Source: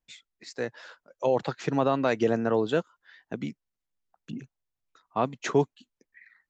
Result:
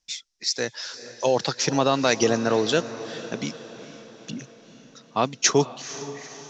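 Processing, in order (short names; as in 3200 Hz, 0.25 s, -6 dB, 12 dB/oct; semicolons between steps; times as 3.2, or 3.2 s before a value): synth low-pass 5600 Hz, resonance Q 4.5; high shelf 3000 Hz +12 dB; diffused feedback echo 0.457 s, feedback 54%, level -14 dB; gain +2.5 dB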